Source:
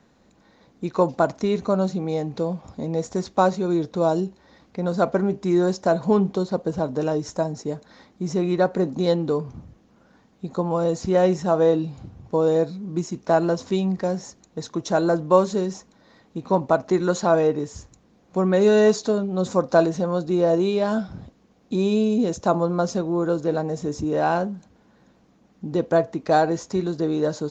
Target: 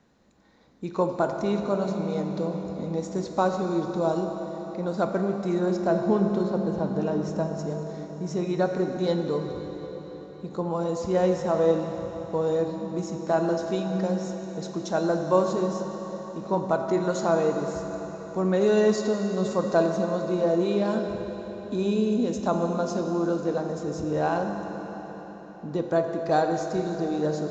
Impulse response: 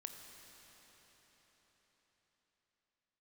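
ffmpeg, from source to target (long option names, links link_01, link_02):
-filter_complex "[0:a]asettb=1/sr,asplit=3[link_01][link_02][link_03];[link_01]atrim=end=5.594[link_04];[link_02]atrim=start=5.59:end=7.59,asetpts=PTS-STARTPTS,afade=type=in:duration=0.004:curve=qsin,afade=type=out:start_time=1.996:duration=0.004:curve=qsin,bass=frequency=250:gain=2,treble=frequency=4000:gain=-6[link_05];[link_03]atrim=start=7.586[link_06];[link_04][link_05]acrossfade=duration=0.004:curve1=hsin:curve2=qsin[link_07];[link_07][link_06]acrossfade=duration=0.004:curve1=qsin:curve2=hsin[link_08];[1:a]atrim=start_sample=2205[link_09];[link_08][link_09]afir=irnorm=-1:irlink=0"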